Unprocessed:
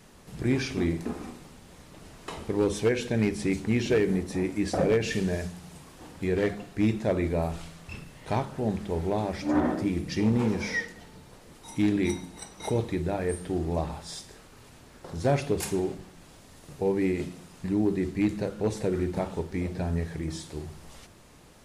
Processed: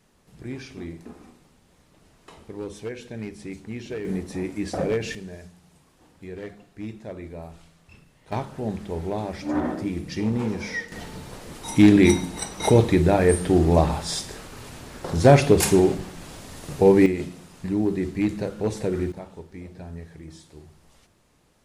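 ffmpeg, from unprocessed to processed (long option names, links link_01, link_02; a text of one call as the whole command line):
ffmpeg -i in.wav -af "asetnsamples=nb_out_samples=441:pad=0,asendcmd='4.05 volume volume -1dB;5.15 volume volume -10.5dB;8.32 volume volume -0.5dB;10.92 volume volume 11dB;17.06 volume volume 2dB;19.12 volume volume -9dB',volume=-9dB" out.wav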